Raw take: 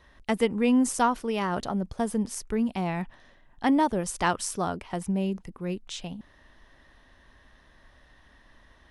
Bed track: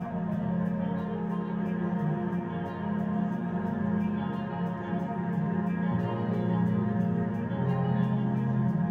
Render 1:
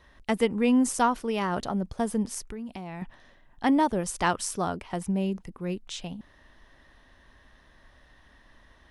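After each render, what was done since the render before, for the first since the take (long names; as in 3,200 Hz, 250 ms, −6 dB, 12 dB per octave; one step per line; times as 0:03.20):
0:02.47–0:03.02: downward compressor 5 to 1, threshold −35 dBFS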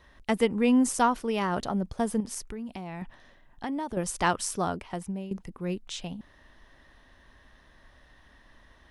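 0:02.20–0:03.97: downward compressor 4 to 1, threshold −31 dBFS
0:04.76–0:05.31: fade out, to −13.5 dB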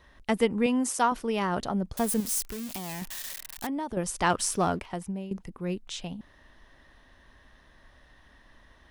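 0:00.66–0:01.12: high-pass filter 390 Hz 6 dB per octave
0:01.97–0:03.67: spike at every zero crossing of −25.5 dBFS
0:04.30–0:04.86: leveller curve on the samples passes 1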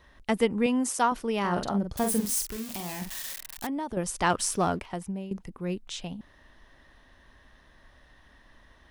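0:01.40–0:03.35: double-tracking delay 45 ms −6 dB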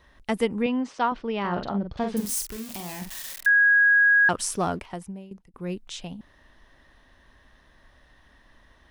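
0:00.62–0:02.17: low-pass filter 4,200 Hz 24 dB per octave
0:03.46–0:04.29: beep over 1,650 Hz −14.5 dBFS
0:04.90–0:05.54: fade out, to −20.5 dB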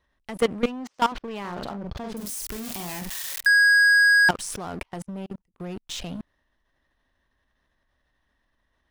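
output level in coarse steps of 22 dB
leveller curve on the samples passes 3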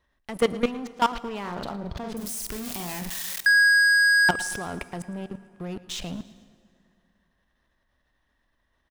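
repeating echo 112 ms, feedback 52%, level −18.5 dB
dense smooth reverb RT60 2.6 s, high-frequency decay 0.7×, DRR 17.5 dB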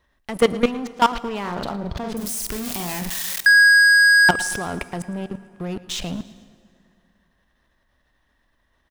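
level +5.5 dB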